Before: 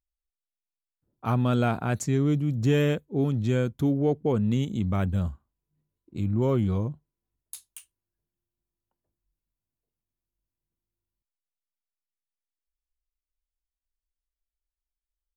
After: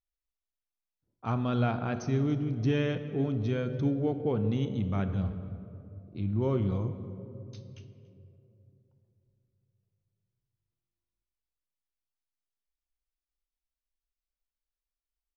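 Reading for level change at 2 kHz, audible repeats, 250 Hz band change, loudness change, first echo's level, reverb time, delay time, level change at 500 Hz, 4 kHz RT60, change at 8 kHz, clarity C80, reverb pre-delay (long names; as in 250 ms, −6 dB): −4.5 dB, 1, −4.0 dB, −4.5 dB, −22.5 dB, 2.9 s, 285 ms, −4.5 dB, 1.2 s, below −10 dB, 11.0 dB, 3 ms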